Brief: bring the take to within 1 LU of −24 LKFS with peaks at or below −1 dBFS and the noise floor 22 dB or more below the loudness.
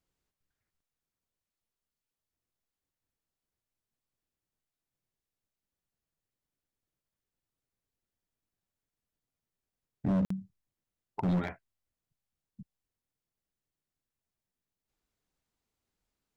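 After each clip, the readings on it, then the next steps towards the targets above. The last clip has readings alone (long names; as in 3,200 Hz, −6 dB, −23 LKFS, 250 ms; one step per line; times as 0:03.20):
share of clipped samples 0.6%; peaks flattened at −25.0 dBFS; number of dropouts 1; longest dropout 54 ms; integrated loudness −33.0 LKFS; sample peak −25.0 dBFS; target loudness −24.0 LKFS
→ clipped peaks rebuilt −25 dBFS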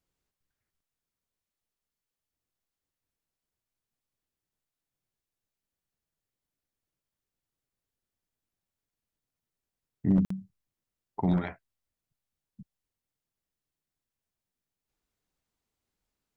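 share of clipped samples 0.0%; number of dropouts 1; longest dropout 54 ms
→ repair the gap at 0:10.25, 54 ms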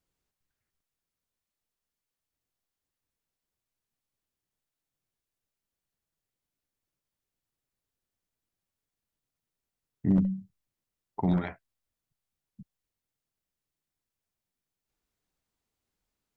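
number of dropouts 0; integrated loudness −29.5 LKFS; sample peak −16.0 dBFS; target loudness −24.0 LKFS
→ level +5.5 dB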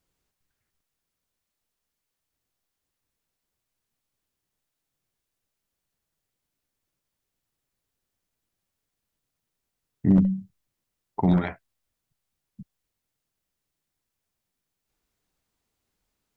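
integrated loudness −24.0 LKFS; sample peak −10.5 dBFS; background noise floor −84 dBFS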